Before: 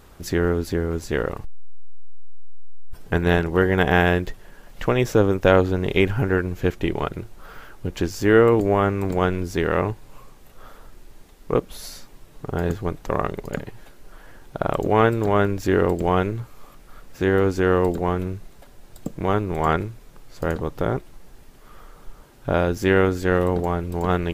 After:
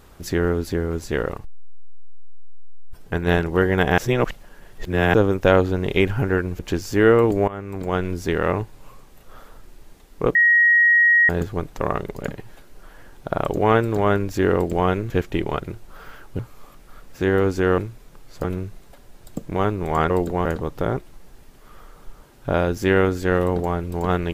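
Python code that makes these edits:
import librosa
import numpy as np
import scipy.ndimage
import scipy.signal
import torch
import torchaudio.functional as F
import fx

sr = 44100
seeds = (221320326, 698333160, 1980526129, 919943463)

y = fx.edit(x, sr, fx.clip_gain(start_s=1.37, length_s=1.91, db=-3.0),
    fx.reverse_span(start_s=3.98, length_s=1.16),
    fx.move(start_s=6.59, length_s=1.29, to_s=16.39),
    fx.fade_in_from(start_s=8.77, length_s=0.64, floor_db=-17.5),
    fx.bleep(start_s=11.64, length_s=0.94, hz=1890.0, db=-11.5),
    fx.swap(start_s=17.78, length_s=0.35, other_s=19.79, other_length_s=0.66), tone=tone)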